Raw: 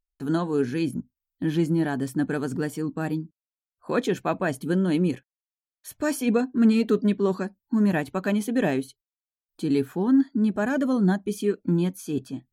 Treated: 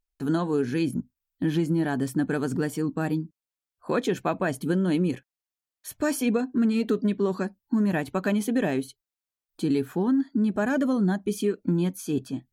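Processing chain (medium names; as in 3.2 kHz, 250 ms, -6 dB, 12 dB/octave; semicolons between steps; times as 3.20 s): compression, threshold -22 dBFS, peak gain reduction 8 dB; trim +2 dB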